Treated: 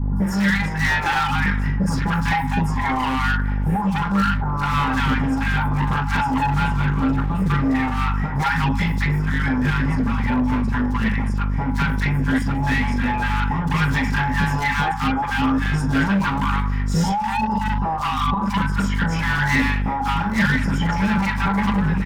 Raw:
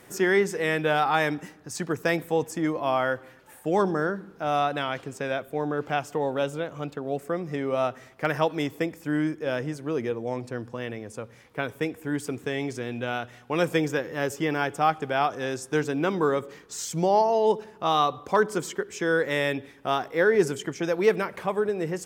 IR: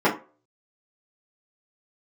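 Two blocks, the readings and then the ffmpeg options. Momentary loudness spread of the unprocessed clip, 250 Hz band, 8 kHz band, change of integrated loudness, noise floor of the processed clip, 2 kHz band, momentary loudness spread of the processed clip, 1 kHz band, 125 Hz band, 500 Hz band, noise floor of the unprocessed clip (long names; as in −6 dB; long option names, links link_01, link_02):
10 LU, +9.0 dB, +0.5 dB, +6.0 dB, −23 dBFS, +8.0 dB, 3 LU, +6.0 dB, +15.0 dB, −10.5 dB, −52 dBFS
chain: -filter_complex "[1:a]atrim=start_sample=2205[link_01];[0:a][link_01]afir=irnorm=-1:irlink=0,aeval=exprs='val(0)+0.112*(sin(2*PI*50*n/s)+sin(2*PI*2*50*n/s)/2+sin(2*PI*3*50*n/s)/3+sin(2*PI*4*50*n/s)/4+sin(2*PI*5*50*n/s)/5)':channel_layout=same,bandreject=frequency=60:width_type=h:width=6,bandreject=frequency=120:width_type=h:width=6,bandreject=frequency=180:width_type=h:width=6,afftfilt=real='re*(1-between(b*sr/4096,270,770))':imag='im*(1-between(b*sr/4096,270,770))':win_size=4096:overlap=0.75,acompressor=threshold=-12dB:ratio=10,asoftclip=type=hard:threshold=-15.5dB,acrossover=split=940|4800[link_02][link_03][link_04];[link_04]adelay=160[link_05];[link_03]adelay=200[link_06];[link_02][link_06][link_05]amix=inputs=3:normalize=0"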